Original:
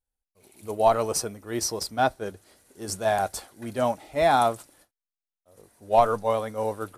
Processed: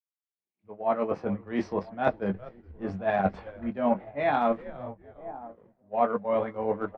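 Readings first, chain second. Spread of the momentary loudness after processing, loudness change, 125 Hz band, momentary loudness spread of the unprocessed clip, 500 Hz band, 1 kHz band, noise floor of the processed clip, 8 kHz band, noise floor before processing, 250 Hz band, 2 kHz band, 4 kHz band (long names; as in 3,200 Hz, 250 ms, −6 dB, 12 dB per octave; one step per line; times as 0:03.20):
15 LU, −4.0 dB, −2.0 dB, 16 LU, −3.0 dB, −5.0 dB, below −85 dBFS, below −30 dB, below −85 dBFS, +3.5 dB, −3.0 dB, −15.0 dB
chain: fade in at the beginning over 1.92 s
automatic gain control gain up to 11 dB
loudspeaker in its box 110–2,300 Hz, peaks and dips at 120 Hz −6 dB, 200 Hz +8 dB, 370 Hz −4 dB, 1,400 Hz −4 dB
feedback echo with a band-pass in the loop 1,009 ms, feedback 46%, band-pass 370 Hz, level −19 dB
dynamic equaliser 830 Hz, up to −5 dB, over −25 dBFS, Q 1.6
double-tracking delay 21 ms −5.5 dB
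on a send: echo with shifted repeats 410 ms, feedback 41%, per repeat −120 Hz, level −19.5 dB
on the sum: transient designer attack −1 dB, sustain −7 dB
reversed playback
downward compressor 4 to 1, threshold −25 dBFS, peak gain reduction 12.5 dB
reversed playback
multiband upward and downward expander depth 100%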